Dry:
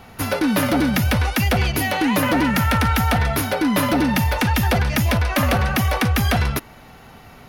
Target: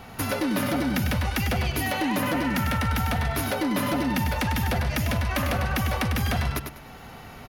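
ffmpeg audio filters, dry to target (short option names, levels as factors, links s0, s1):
-af "alimiter=limit=0.168:level=0:latency=1:release=407,acompressor=threshold=0.0708:ratio=6,aecho=1:1:99|198|297:0.473|0.118|0.0296"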